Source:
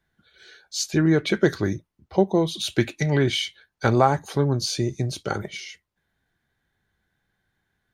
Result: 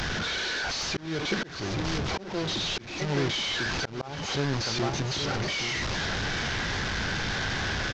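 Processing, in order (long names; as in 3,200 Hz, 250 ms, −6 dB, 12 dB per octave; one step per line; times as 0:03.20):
linear delta modulator 32 kbit/s, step −16.5 dBFS
single-tap delay 820 ms −8.5 dB
volume swells 316 ms
level −7.5 dB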